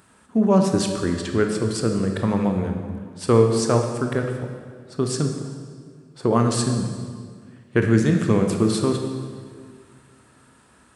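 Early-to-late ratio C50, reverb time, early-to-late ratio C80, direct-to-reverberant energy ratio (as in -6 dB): 5.0 dB, 1.9 s, 6.5 dB, 3.5 dB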